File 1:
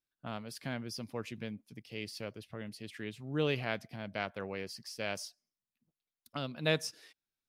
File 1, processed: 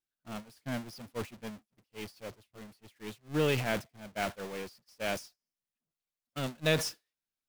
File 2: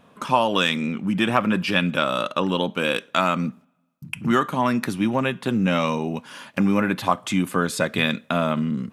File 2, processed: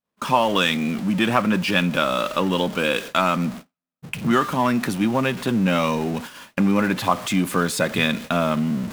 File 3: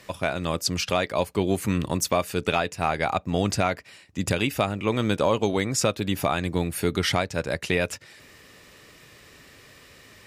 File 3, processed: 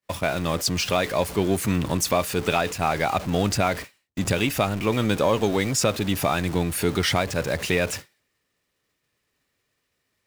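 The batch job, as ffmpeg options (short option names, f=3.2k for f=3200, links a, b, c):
-af "aeval=exprs='val(0)+0.5*0.0335*sgn(val(0))':c=same,agate=range=-57dB:threshold=-31dB:ratio=16:detection=peak"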